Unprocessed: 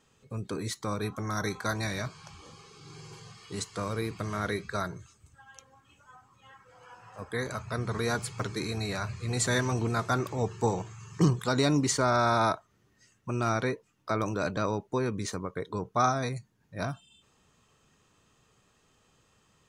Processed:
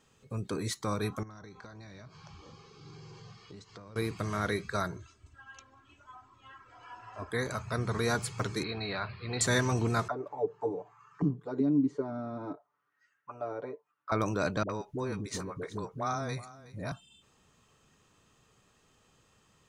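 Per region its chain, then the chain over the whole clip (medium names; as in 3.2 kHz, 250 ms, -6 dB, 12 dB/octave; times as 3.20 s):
1.23–3.96 s: peaking EQ 2.6 kHz -5 dB 2.9 oct + compression 16:1, threshold -44 dBFS + low-pass 5.7 kHz 24 dB/octave
4.96–7.31 s: low-pass 4.7 kHz + comb 3 ms, depth 78%
8.63–9.41 s: steep low-pass 4.5 kHz 72 dB/octave + bass shelf 220 Hz -9 dB
10.08–14.12 s: comb 6.9 ms, depth 77% + auto-wah 250–1600 Hz, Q 3.6, down, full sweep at -18.5 dBFS
14.63–16.92 s: compression 2:1, threshold -34 dBFS + phase dispersion highs, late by 66 ms, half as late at 450 Hz + delay 368 ms -17.5 dB
whole clip: none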